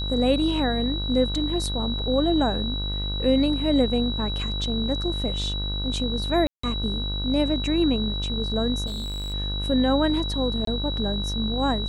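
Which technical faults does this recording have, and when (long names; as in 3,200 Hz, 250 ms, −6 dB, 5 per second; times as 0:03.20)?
mains buzz 50 Hz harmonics 32 −29 dBFS
whistle 3,900 Hz −30 dBFS
0:06.47–0:06.63: drop-out 164 ms
0:08.86–0:09.34: clipping −27.5 dBFS
0:10.65–0:10.67: drop-out 23 ms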